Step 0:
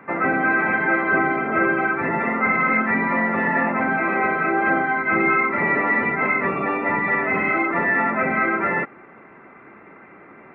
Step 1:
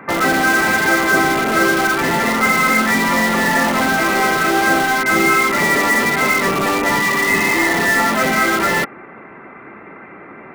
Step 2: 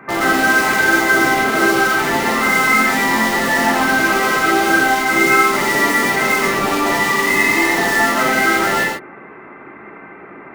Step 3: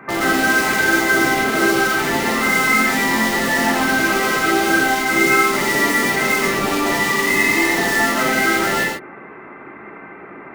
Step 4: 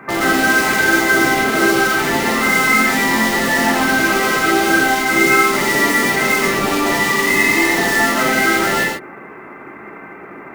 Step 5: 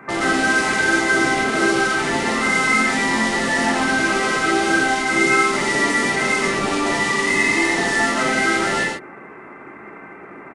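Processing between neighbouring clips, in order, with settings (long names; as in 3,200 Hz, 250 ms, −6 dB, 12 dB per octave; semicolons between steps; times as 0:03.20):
healed spectral selection 0:07.09–0:07.80, 480–2,000 Hz both; in parallel at −6 dB: wrap-around overflow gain 19.5 dB; on the sum: level +4.5 dB
reverb whose tail is shaped and stops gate 160 ms flat, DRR −2 dB; level −4 dB
dynamic equaliser 1,000 Hz, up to −4 dB, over −26 dBFS, Q 0.79
log-companded quantiser 8 bits; level +2 dB
downsampling to 22,050 Hz; level −3.5 dB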